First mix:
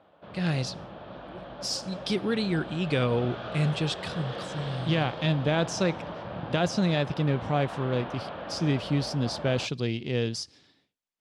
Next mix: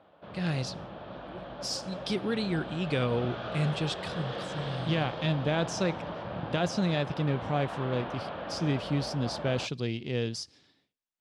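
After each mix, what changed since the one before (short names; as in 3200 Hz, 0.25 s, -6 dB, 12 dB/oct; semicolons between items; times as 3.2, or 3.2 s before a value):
speech -3.0 dB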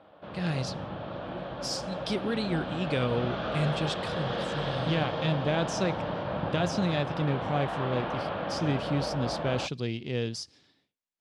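reverb: on, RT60 2.5 s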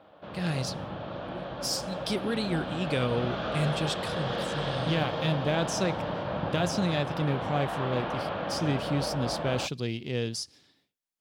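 master: remove air absorption 59 m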